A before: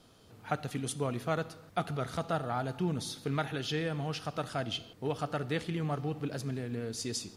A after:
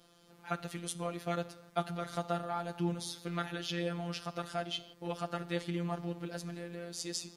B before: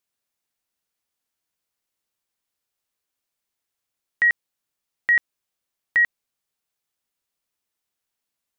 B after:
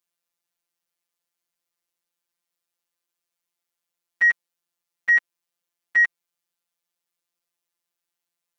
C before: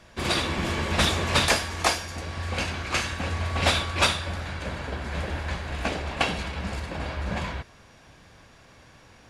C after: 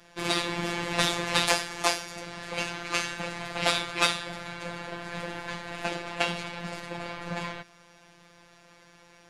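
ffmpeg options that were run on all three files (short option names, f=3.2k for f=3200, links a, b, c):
-af "acontrast=27,afftfilt=real='hypot(re,im)*cos(PI*b)':imag='0':win_size=1024:overlap=0.75,lowshelf=f=130:g=-8.5,volume=-3.5dB"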